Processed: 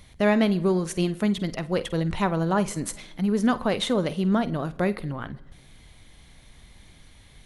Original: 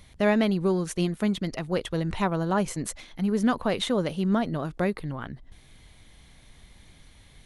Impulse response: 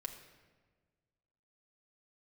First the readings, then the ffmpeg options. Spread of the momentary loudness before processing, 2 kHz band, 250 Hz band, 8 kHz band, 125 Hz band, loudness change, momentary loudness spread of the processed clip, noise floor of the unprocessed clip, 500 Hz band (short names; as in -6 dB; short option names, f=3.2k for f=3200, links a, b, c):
10 LU, +1.5 dB, +2.0 dB, +1.5 dB, +2.0 dB, +2.0 dB, 10 LU, -54 dBFS, +1.5 dB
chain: -filter_complex "[0:a]asplit=2[a][b];[1:a]atrim=start_sample=2205,adelay=49[c];[b][c]afir=irnorm=-1:irlink=0,volume=-12.5dB[d];[a][d]amix=inputs=2:normalize=0,volume=1.5dB"